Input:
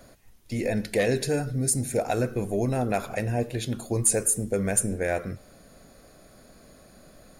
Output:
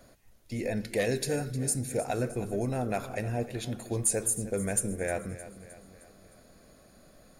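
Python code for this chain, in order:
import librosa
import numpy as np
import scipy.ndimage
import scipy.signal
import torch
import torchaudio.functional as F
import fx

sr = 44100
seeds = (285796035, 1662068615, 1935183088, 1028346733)

p1 = fx.high_shelf(x, sr, hz=5600.0, db=6.0, at=(0.97, 1.53))
p2 = p1 + fx.echo_feedback(p1, sr, ms=309, feedback_pct=51, wet_db=-15, dry=0)
y = p2 * 10.0 ** (-5.0 / 20.0)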